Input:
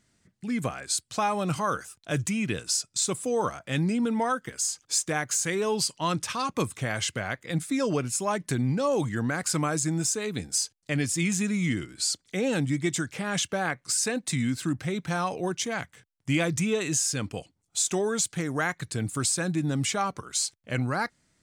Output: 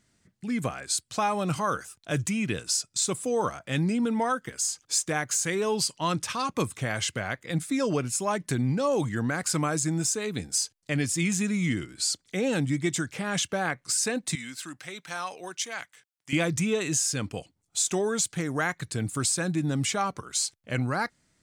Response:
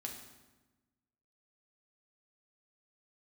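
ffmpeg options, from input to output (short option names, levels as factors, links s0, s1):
-filter_complex "[0:a]asettb=1/sr,asplit=3[s0][s1][s2];[s0]atrim=end=14.354[s3];[s1]atrim=start=14.35:end=16.33,asetpts=PTS-STARTPTS,afade=t=in:d=0.004:c=qsin,afade=t=out:st=1.976:d=0.004:c=qsin,highpass=f=1400:p=1[s4];[s2]atrim=start=16.326[s5];[s3][s4]acrossfade=d=0.004:c1=hsin:c2=qsin[s6];[s6][s5]acrossfade=d=0.004:c1=qsin:c2=hsin"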